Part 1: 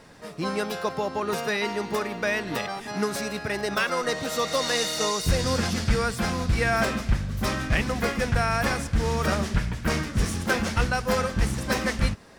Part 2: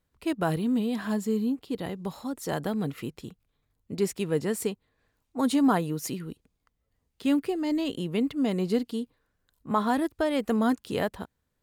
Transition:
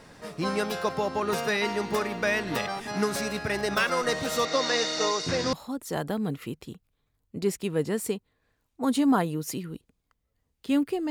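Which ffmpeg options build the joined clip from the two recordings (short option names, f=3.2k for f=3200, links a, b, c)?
-filter_complex "[0:a]asettb=1/sr,asplit=3[a][b][c];[a]atrim=end=4.454[d];[b]atrim=start=4.45:end=5.53,asetpts=PTS-STARTPTS,afade=t=in:d=0.004:c=qsin,afade=t=out:st=1.076:d=0.004:c=qsin,highpass=f=130:w=0.5412,highpass=f=130:w=1.3066,equalizer=f=140:t=q:w=4:g=-5,equalizer=f=200:t=q:w=4:g=-9,equalizer=f=290:t=q:w=4:g=6,equalizer=f=3k:t=q:w=4:g=-4,lowpass=f=6.2k:w=0.5412,lowpass=f=6.2k:w=1.3066[e];[c]atrim=start=5.526[f];[d][e]acrossfade=d=0.004:c1=hsin:c2=qsin[g];[g][f]acrossfade=d=0.004:c1=qsin:c2=hsin,apad=whole_dur=11.1,atrim=end=11.1,atrim=end=5.532[h];[1:a]atrim=start=2.088:end=7.66[i];[h][i]acrossfade=d=0.004:c1=hsin:c2=hsin"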